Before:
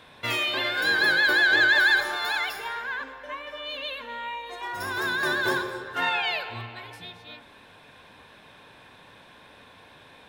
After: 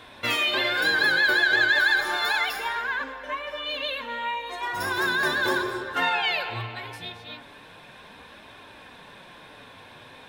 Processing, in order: compression 2:1, threshold -26 dBFS, peak gain reduction 5.5 dB; flange 0.35 Hz, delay 2.7 ms, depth 5.8 ms, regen -44%; trim +8 dB

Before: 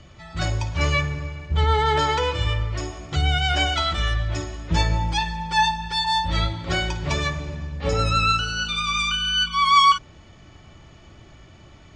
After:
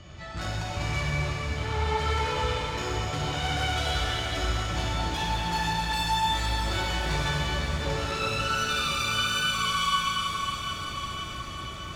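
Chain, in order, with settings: compression 5:1, threshold -27 dBFS, peak gain reduction 14.5 dB; valve stage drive 31 dB, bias 0.35; on a send: echo that smears into a reverb 550 ms, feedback 67%, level -10 dB; on the sum: plate-style reverb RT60 4.9 s, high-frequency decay 1×, DRR -6.5 dB

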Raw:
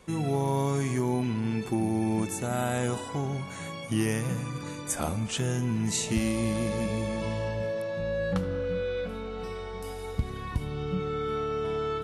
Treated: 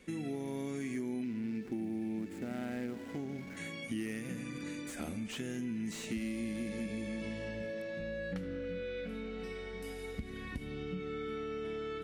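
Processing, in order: 1.24–3.57 s: median filter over 15 samples; graphic EQ 125/250/1000/2000 Hz -9/+10/-11/+9 dB; compression 3:1, threshold -31 dBFS, peak gain reduction 10 dB; slew-rate limiter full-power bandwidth 71 Hz; trim -6 dB

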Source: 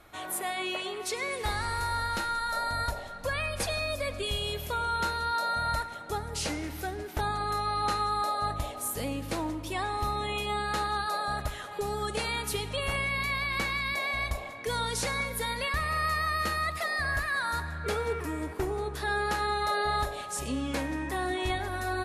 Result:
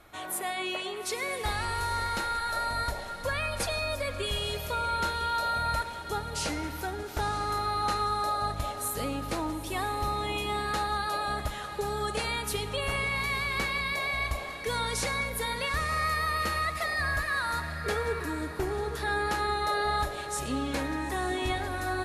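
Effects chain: echo that smears into a reverb 891 ms, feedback 42%, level -11 dB

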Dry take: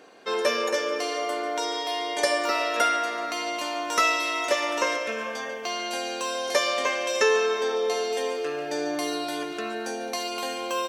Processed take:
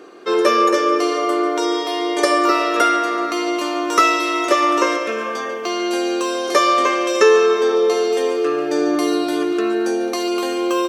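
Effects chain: small resonant body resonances 350/1200 Hz, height 15 dB, ringing for 40 ms; trim +4 dB

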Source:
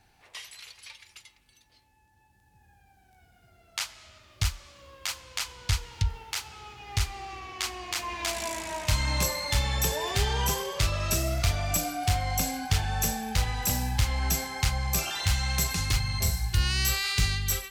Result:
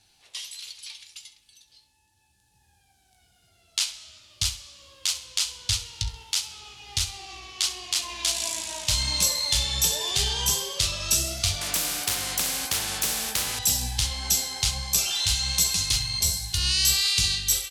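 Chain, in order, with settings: high-order bell 5.8 kHz +14 dB 2.3 oct; flange 1.4 Hz, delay 8.9 ms, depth 9.6 ms, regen +55%; on a send: feedback delay 66 ms, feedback 34%, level -14 dB; 11.61–13.59 s: on the sum: spectrum-flattening compressor 4:1; trim -1.5 dB

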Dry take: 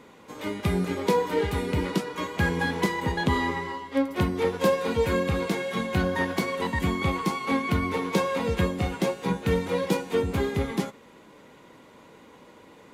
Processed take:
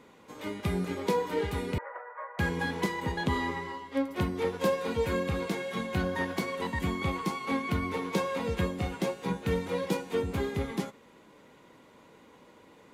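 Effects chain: 1.78–2.39 s: Chebyshev band-pass 530–1900 Hz, order 4; trim -5 dB

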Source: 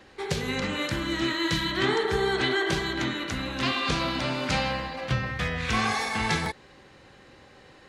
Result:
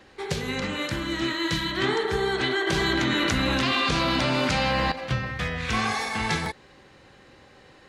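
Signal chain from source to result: 2.67–4.92 s: level flattener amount 100%

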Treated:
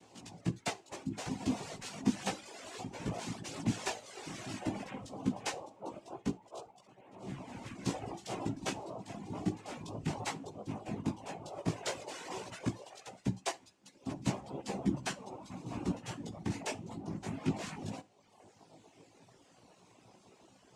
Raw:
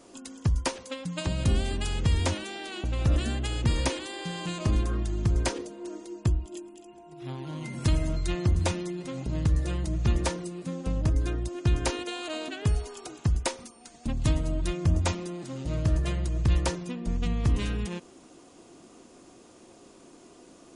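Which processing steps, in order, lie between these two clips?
noise-vocoded speech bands 4; chorus voices 2, 0.14 Hz, delay 17 ms, depth 2.2 ms; reverb removal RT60 0.98 s; on a send: reverberation, pre-delay 3 ms, DRR 15 dB; on the sum: trim -3 dB

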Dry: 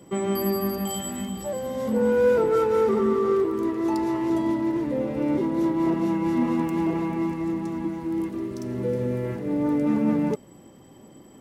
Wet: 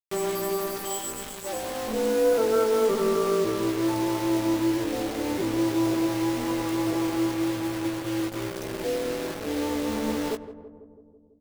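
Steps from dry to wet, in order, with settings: high-pass 270 Hz 24 dB/octave; in parallel at +1 dB: peak limiter -21 dBFS, peak gain reduction 8.5 dB; on the sum: AM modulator 210 Hz, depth 50%; bit crusher 5-bit; doubling 18 ms -7 dB; on a send: filtered feedback delay 165 ms, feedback 71%, low-pass 930 Hz, level -12 dB; on the sum: trim -5.5 dB

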